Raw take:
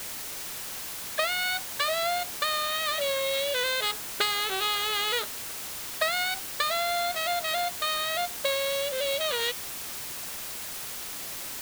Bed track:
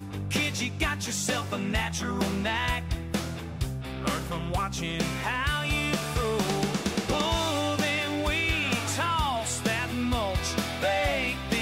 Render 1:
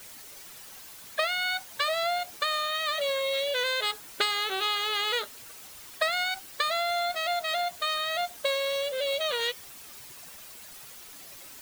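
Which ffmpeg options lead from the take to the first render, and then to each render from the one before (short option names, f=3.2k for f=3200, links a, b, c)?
-af "afftdn=nr=11:nf=-37"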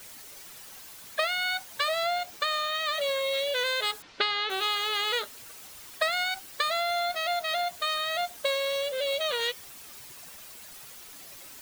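-filter_complex "[0:a]asettb=1/sr,asplit=3[a][b][c];[a]atrim=end=2.054[d];[b]atrim=start=2.05:end=2.94,asetpts=PTS-STARTPTS,afade=t=in:d=0.004:c=qsin,afade=t=out:st=0.886:d=0.004:c=qsin,equalizer=f=11k:t=o:w=0.55:g=-6[e];[c]atrim=start=2.936[f];[d][e]acrossfade=d=0.004:c1=hsin:c2=qsin[g];[g][f]acrossfade=d=0.004:c1=qsin:c2=hsin,asettb=1/sr,asplit=3[h][i][j];[h]atrim=end=4.024[k];[i]atrim=start=4.02:end=4.5,asetpts=PTS-STARTPTS,afade=t=in:d=0.004:c=qsin,afade=t=out:st=0.476:d=0.004:c=qsin,lowpass=f=4.9k:w=0.5412,lowpass=f=4.9k:w=1.3066[l];[j]atrim=start=4.496[m];[k][l]acrossfade=d=0.004:c1=hsin:c2=qsin[n];[n][m]acrossfade=d=0.004:c1=qsin:c2=hsin,asettb=1/sr,asplit=3[o][p][q];[o]atrim=end=6.804[r];[p]atrim=start=6.8:end=7.68,asetpts=PTS-STARTPTS,afade=t=in:d=0.004:c=qsin,afade=t=out:st=0.876:d=0.004:c=qsin,bandreject=f=7.7k:w=12[s];[q]atrim=start=7.676[t];[r][s]acrossfade=d=0.004:c1=hsin:c2=qsin[u];[u][t]acrossfade=d=0.004:c1=qsin:c2=hsin"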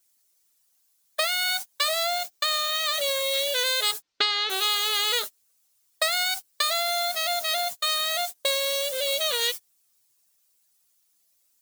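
-af "agate=range=-33dB:threshold=-34dB:ratio=16:detection=peak,bass=f=250:g=-1,treble=f=4k:g=13"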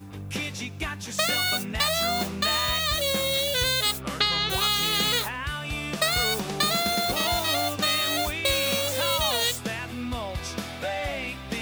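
-filter_complex "[1:a]volume=-4dB[a];[0:a][a]amix=inputs=2:normalize=0"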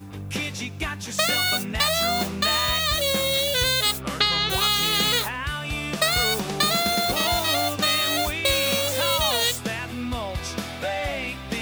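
-af "volume=2.5dB"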